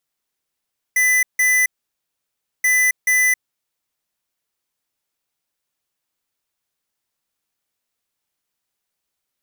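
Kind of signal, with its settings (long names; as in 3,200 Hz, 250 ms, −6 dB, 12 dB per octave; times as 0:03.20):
beeps in groups square 2,000 Hz, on 0.27 s, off 0.16 s, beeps 2, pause 0.98 s, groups 2, −15.5 dBFS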